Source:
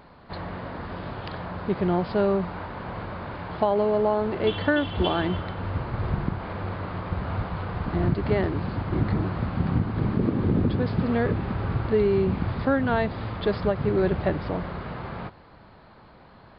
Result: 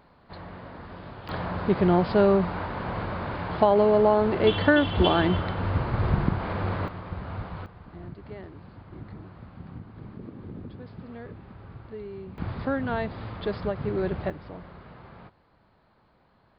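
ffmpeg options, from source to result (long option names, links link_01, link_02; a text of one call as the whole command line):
ffmpeg -i in.wav -af "asetnsamples=nb_out_samples=441:pad=0,asendcmd='1.29 volume volume 3dB;6.88 volume volume -6dB;7.66 volume volume -17.5dB;12.38 volume volume -5dB;14.3 volume volume -12.5dB',volume=-7dB" out.wav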